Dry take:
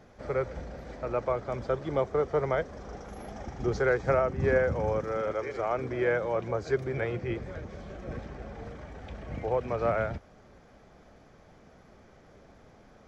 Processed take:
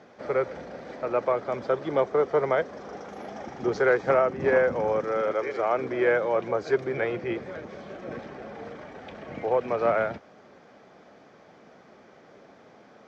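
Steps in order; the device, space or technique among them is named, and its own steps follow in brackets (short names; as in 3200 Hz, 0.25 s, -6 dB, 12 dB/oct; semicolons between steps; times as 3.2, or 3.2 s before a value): public-address speaker with an overloaded transformer (core saturation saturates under 340 Hz; BPF 220–5400 Hz); gain +5 dB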